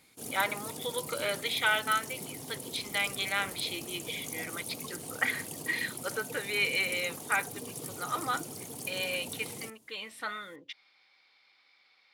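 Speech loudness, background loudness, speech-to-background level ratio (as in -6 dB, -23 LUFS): -33.0 LUFS, -40.0 LUFS, 7.0 dB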